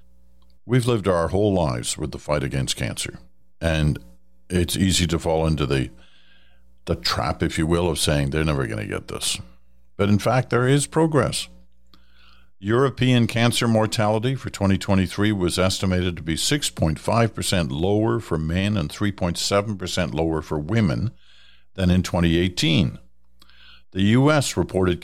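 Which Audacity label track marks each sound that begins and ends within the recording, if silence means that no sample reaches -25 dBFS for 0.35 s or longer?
0.700000	3.150000	sound
3.620000	3.970000	sound
4.500000	5.860000	sound
6.870000	9.400000	sound
9.990000	11.440000	sound
12.650000	21.080000	sound
21.790000	22.890000	sound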